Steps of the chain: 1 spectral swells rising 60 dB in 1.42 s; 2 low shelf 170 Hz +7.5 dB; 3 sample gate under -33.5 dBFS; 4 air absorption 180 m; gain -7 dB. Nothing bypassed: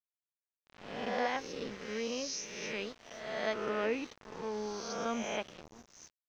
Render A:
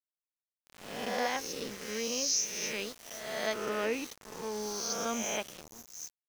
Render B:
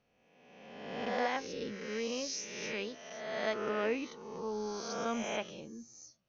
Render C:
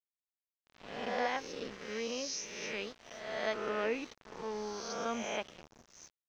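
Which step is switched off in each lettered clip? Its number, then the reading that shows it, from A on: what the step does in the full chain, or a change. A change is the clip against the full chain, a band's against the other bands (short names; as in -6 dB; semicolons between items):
4, 4 kHz band +5.5 dB; 3, distortion -13 dB; 2, 125 Hz band -3.0 dB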